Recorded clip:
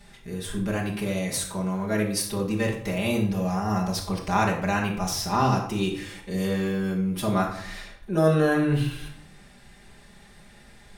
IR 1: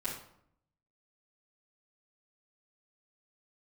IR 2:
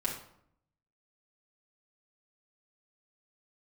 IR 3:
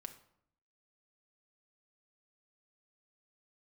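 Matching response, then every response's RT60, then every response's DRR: 2; 0.70, 0.70, 0.70 seconds; −10.0, −4.5, 5.5 decibels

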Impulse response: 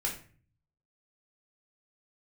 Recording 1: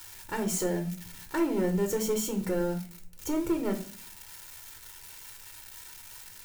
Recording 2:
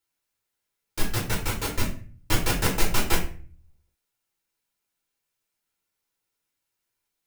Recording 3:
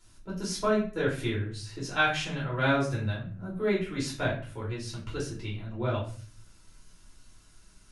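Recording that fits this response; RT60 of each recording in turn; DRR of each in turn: 2; 0.45, 0.40, 0.40 seconds; 4.0, −2.0, −6.5 decibels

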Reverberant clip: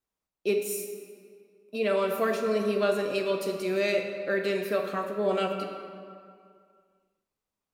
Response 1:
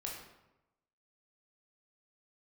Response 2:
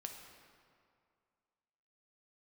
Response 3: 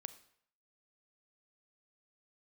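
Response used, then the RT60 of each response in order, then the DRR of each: 2; 0.95, 2.3, 0.65 seconds; −2.5, 2.5, 12.5 decibels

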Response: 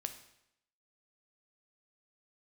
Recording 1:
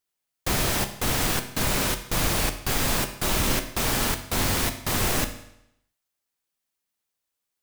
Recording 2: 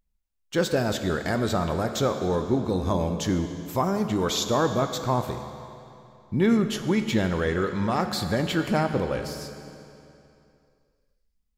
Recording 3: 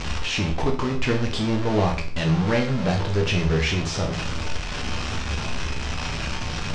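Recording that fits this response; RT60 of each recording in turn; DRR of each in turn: 1; 0.80, 2.7, 0.45 seconds; 7.0, 7.0, 1.5 decibels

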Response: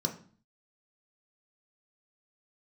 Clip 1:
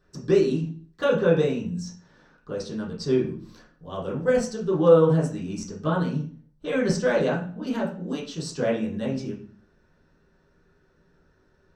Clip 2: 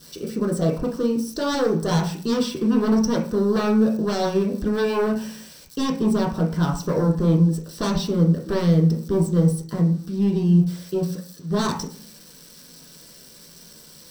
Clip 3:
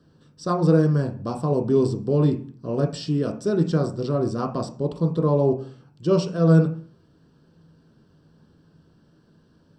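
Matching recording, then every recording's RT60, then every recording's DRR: 3; 0.45, 0.45, 0.45 seconds; −8.0, −1.5, 3.0 decibels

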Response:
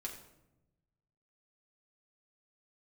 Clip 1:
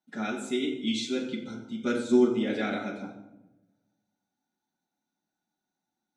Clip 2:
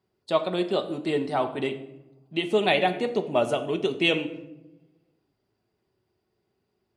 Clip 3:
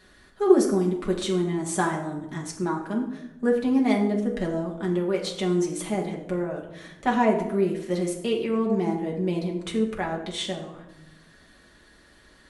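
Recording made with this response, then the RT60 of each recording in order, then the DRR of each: 3; 0.90, 0.95, 0.95 seconds; −6.5, 5.5, −2.0 decibels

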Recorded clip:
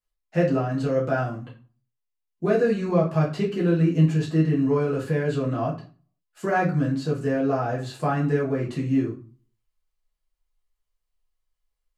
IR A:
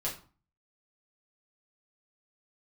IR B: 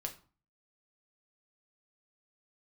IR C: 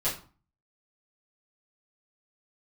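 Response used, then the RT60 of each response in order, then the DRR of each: A; 0.40, 0.40, 0.40 seconds; −6.0, 3.0, −11.5 decibels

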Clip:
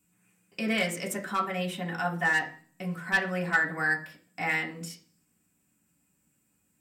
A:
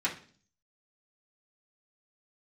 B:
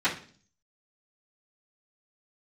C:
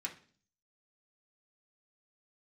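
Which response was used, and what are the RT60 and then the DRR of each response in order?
C; 0.45, 0.45, 0.45 seconds; −8.0, −16.5, −2.5 decibels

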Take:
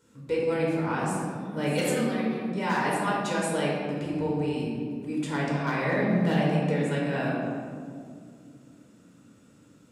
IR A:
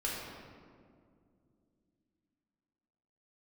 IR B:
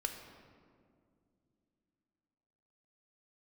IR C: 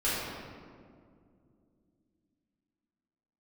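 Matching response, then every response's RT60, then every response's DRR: A; 2.3 s, non-exponential decay, 2.3 s; −5.5, 4.0, −11.0 decibels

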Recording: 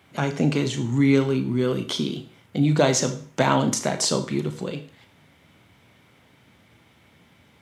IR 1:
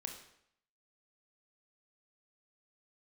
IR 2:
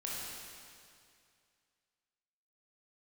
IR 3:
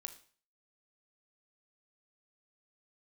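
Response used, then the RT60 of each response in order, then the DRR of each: 3; 0.70, 2.3, 0.45 seconds; 3.0, −5.5, 7.0 decibels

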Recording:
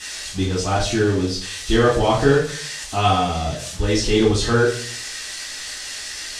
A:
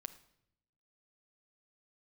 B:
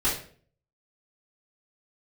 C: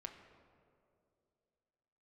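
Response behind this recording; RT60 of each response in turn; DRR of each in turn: B; 0.75, 0.50, 2.5 seconds; 10.5, −10.0, 3.5 decibels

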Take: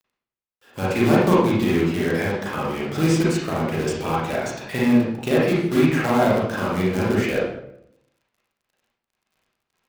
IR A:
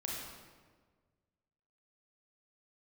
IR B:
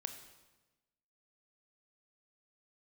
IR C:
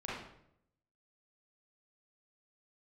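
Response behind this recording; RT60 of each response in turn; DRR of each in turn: C; 1.5, 1.1, 0.75 seconds; −3.5, 6.5, −7.5 decibels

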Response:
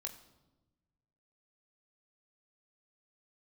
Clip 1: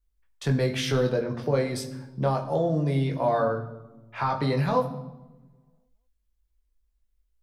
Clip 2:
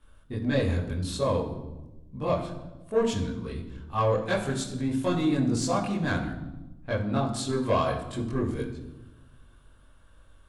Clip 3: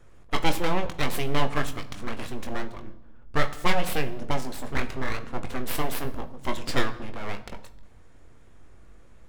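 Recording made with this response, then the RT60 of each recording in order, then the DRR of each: 1; 1.1, 1.1, 1.1 seconds; 2.0, −6.5, 6.5 decibels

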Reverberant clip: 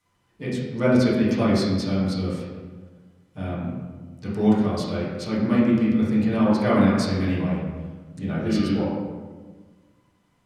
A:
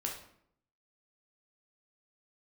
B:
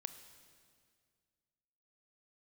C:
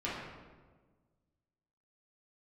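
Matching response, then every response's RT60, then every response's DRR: C; 0.65, 2.0, 1.4 seconds; −1.0, 10.0, −9.0 decibels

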